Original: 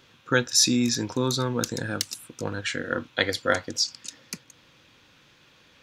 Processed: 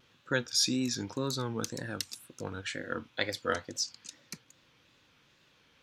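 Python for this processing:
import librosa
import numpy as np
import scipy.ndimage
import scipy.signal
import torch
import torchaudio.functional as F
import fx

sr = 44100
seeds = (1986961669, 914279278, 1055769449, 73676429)

y = fx.wow_flutter(x, sr, seeds[0], rate_hz=2.1, depth_cents=110.0)
y = y * 10.0 ** (-8.0 / 20.0)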